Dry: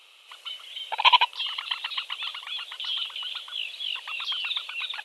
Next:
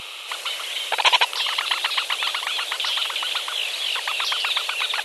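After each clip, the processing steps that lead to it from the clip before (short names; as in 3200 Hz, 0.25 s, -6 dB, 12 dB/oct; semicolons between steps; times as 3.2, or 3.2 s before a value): spectral compressor 2:1; gain +1.5 dB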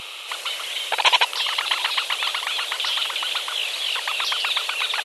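echo 0.663 s -16 dB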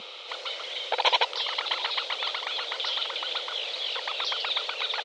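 speaker cabinet 210–5000 Hz, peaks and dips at 210 Hz +7 dB, 500 Hz +8 dB, 1100 Hz -5 dB, 1700 Hz -6 dB, 2700 Hz -9 dB; gain -2.5 dB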